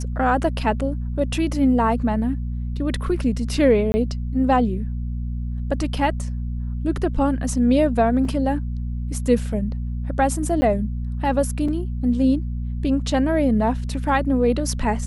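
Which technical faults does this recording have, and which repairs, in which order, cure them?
hum 60 Hz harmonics 4 -26 dBFS
3.92–3.94 s: dropout 20 ms
8.25 s: dropout 3.4 ms
10.61–10.62 s: dropout 10 ms
11.68 s: dropout 4.3 ms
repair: de-hum 60 Hz, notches 4; interpolate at 3.92 s, 20 ms; interpolate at 8.25 s, 3.4 ms; interpolate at 10.61 s, 10 ms; interpolate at 11.68 s, 4.3 ms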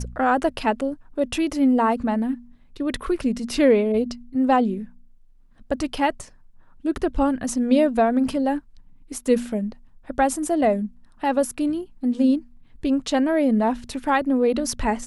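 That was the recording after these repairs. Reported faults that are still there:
nothing left

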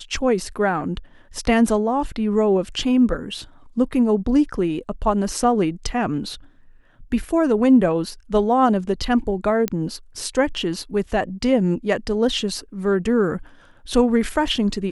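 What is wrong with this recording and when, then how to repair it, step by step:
9.68 s: pop -8 dBFS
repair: de-click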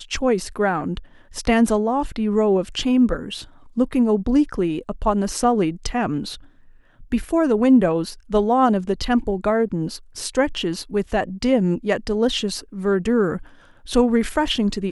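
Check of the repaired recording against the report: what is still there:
nothing left

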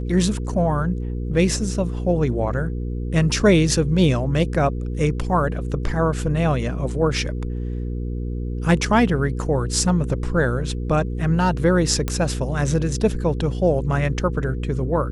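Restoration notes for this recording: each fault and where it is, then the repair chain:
hum 60 Hz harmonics 8 -26 dBFS
12.08 s: pop -9 dBFS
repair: de-click; de-hum 60 Hz, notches 8

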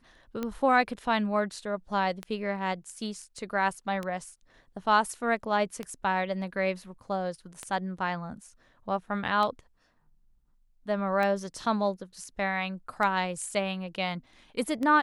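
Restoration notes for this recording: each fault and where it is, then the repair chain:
tick 33 1/3 rpm -19 dBFS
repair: de-click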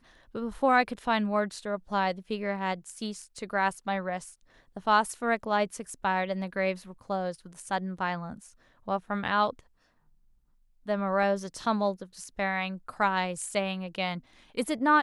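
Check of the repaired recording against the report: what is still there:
nothing left

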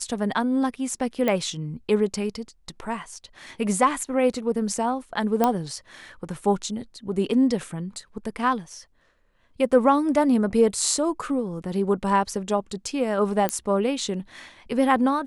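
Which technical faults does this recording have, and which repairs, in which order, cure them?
1.28 s: pop -11 dBFS
5.44 s: pop -7 dBFS
13.49 s: pop -8 dBFS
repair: de-click

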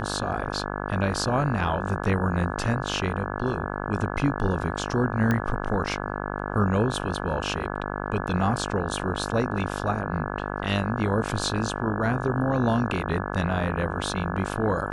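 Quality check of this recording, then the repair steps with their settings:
buzz 50 Hz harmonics 34 -31 dBFS
5.31 s: pop -12 dBFS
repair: de-click; de-hum 50 Hz, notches 34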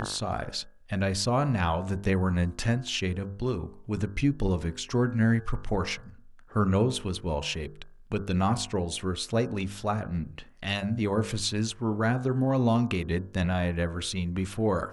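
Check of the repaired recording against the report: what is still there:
5.31 s: pop

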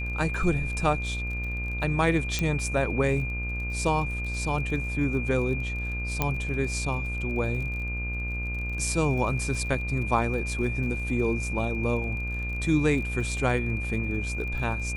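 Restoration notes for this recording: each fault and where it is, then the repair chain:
buzz 60 Hz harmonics 28 -32 dBFS
crackle 33 per s -36 dBFS
whine 2.4 kHz -33 dBFS
2.39 s: pop -12 dBFS
6.22 s: pop -10 dBFS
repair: de-click; band-stop 2.4 kHz, Q 30; de-hum 60 Hz, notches 28

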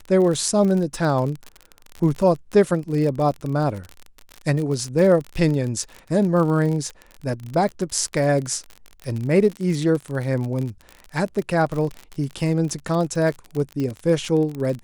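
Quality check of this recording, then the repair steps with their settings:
crackle 43 per s -26 dBFS
13.80 s: pop -16 dBFS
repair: de-click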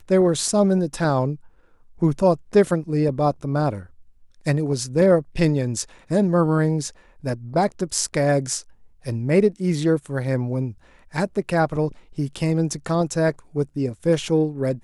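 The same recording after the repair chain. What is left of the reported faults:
nothing left

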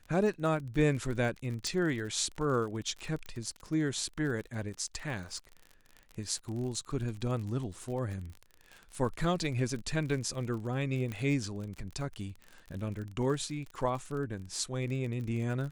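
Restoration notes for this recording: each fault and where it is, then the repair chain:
crackle 40 per s -38 dBFS
1.67 s: pop
3.26 s: pop -29 dBFS
11.12 s: pop -24 dBFS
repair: de-click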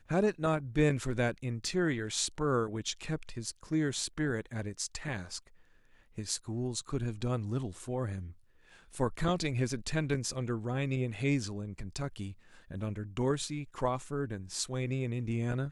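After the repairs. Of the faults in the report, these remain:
1.67 s: pop

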